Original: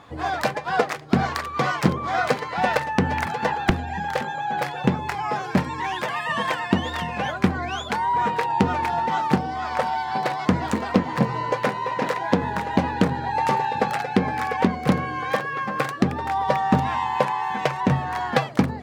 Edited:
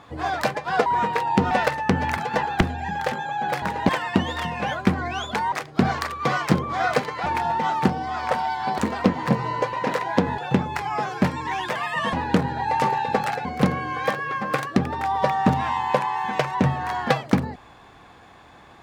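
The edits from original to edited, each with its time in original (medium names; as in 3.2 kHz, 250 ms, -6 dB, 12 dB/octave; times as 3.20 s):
0.86–2.60 s: swap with 8.09–8.74 s
4.71–6.46 s: swap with 12.53–12.80 s
10.26–10.68 s: delete
11.63–11.88 s: delete
14.12–14.71 s: delete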